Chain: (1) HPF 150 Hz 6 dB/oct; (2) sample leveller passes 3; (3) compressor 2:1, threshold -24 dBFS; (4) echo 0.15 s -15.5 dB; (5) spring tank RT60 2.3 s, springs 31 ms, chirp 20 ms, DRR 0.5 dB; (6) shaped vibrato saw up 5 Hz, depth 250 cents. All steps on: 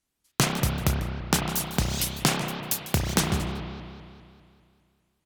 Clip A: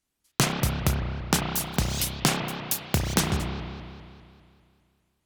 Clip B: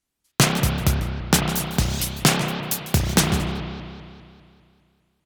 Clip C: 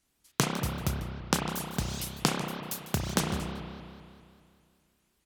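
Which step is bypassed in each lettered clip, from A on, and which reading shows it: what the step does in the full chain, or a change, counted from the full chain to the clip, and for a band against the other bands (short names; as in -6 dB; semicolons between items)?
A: 4, momentary loudness spread change -2 LU; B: 3, mean gain reduction 3.5 dB; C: 2, crest factor change +5.5 dB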